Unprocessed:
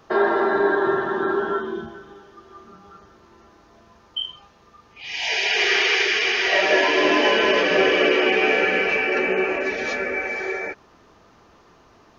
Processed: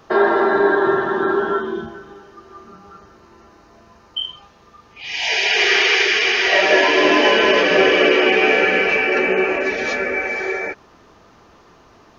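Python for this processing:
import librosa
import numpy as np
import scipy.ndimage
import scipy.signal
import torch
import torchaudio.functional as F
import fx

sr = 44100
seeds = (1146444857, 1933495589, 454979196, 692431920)

y = fx.notch(x, sr, hz=3400.0, q=9.3, at=(1.89, 4.24))
y = F.gain(torch.from_numpy(y), 4.0).numpy()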